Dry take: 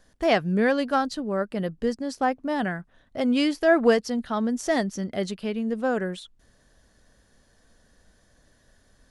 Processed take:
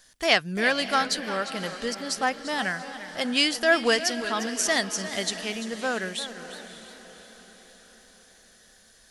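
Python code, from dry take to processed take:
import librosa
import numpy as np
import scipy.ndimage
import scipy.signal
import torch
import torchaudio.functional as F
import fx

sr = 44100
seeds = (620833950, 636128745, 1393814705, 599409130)

y = fx.tilt_shelf(x, sr, db=-10.0, hz=1300.0)
y = fx.echo_diffused(y, sr, ms=577, feedback_pct=51, wet_db=-14)
y = fx.echo_warbled(y, sr, ms=347, feedback_pct=33, rate_hz=2.8, cents=139, wet_db=-13)
y = F.gain(torch.from_numpy(y), 2.0).numpy()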